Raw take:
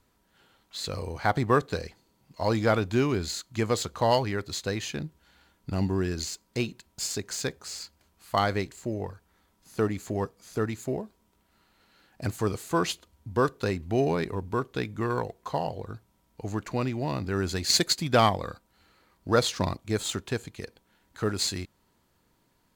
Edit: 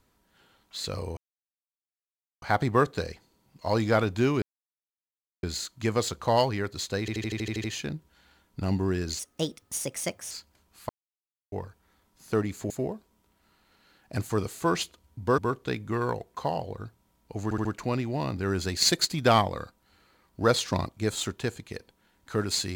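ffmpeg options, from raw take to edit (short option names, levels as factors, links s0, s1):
-filter_complex "[0:a]asplit=20[s0][s1][s2][s3][s4][s5][s6][s7][s8][s9][s10][s11][s12][s13][s14][s15][s16][s17][s18][s19];[s0]atrim=end=1.17,asetpts=PTS-STARTPTS,afade=t=out:st=1.166:d=0.004:c=hsin,apad=pad_dur=1.25[s20];[s1]atrim=start=1.17:end=3.17,asetpts=PTS-STARTPTS,afade=t=in:d=0.004:c=hsin,afade=t=out:st=1.996:d=0.004:c=hsin,apad=pad_dur=1.01[s21];[s2]atrim=start=3.17:end=4.822,asetpts=PTS-STARTPTS,afade=t=in:d=0.004:c=hsin[s22];[s3]atrim=start=4.738:end=4.822[s23];[s4]atrim=start=4.738:end=4.822[s24];[s5]atrim=start=4.738:end=4.822[s25];[s6]atrim=start=4.738:end=4.822[s26];[s7]atrim=start=4.738:end=4.822[s27];[s8]atrim=start=4.738:end=4.822[s28];[s9]atrim=start=4.738:end=4.822[s29];[s10]atrim=start=4.738:end=6.294[s30];[s11]atrim=start=6.29:end=7.77,asetpts=PTS-STARTPTS,asetrate=58212,aresample=44100,atrim=end_sample=49445,asetpts=PTS-STARTPTS[s31];[s12]atrim=start=7.766:end=8.35,asetpts=PTS-STARTPTS,afade=t=out:st=0.58:d=0.004:c=hsin[s32];[s13]atrim=start=8.35:end=8.98,asetpts=PTS-STARTPTS,volume=0[s33];[s14]atrim=start=8.98:end=10.162,asetpts=PTS-STARTPTS,afade=t=in:d=0.004:c=hsin[s34];[s15]atrim=start=10.788:end=13.472[s35];[s16]atrim=start=14.468:end=16.602[s36];[s17]atrim=start=16.528:end=16.602[s37];[s18]atrim=start=16.528:end=16.602[s38];[s19]atrim=start=16.528[s39];[s20][s21][s22]concat=n=3:v=0:a=1[s40];[s40][s23]acrossfade=d=0.004:c1=hsin:c2=hsin[s41];[s41][s24]acrossfade=d=0.004:c1=hsin:c2=hsin[s42];[s42][s25]acrossfade=d=0.004:c1=hsin:c2=hsin[s43];[s43][s26]acrossfade=d=0.004:c1=hsin:c2=hsin[s44];[s44][s27]acrossfade=d=0.004:c1=hsin:c2=hsin[s45];[s45][s28]acrossfade=d=0.004:c1=hsin:c2=hsin[s46];[s46][s29]acrossfade=d=0.004:c1=hsin:c2=hsin[s47];[s47][s30]acrossfade=d=0.004:c1=hsin:c2=hsin[s48];[s48][s31]acrossfade=d=0.004:c1=hsin:c2=hsin[s49];[s32][s33][s34]concat=n=3:v=0:a=1[s50];[s49][s50]acrossfade=d=0.004:c1=hsin:c2=hsin[s51];[s51][s35]acrossfade=d=0.004:c1=hsin:c2=hsin[s52];[s52][s36]acrossfade=d=0.004:c1=hsin:c2=hsin[s53];[s53][s37]acrossfade=d=0.004:c1=hsin:c2=hsin[s54];[s54][s38]acrossfade=d=0.004:c1=hsin:c2=hsin[s55];[s55][s39]acrossfade=d=0.004:c1=hsin:c2=hsin"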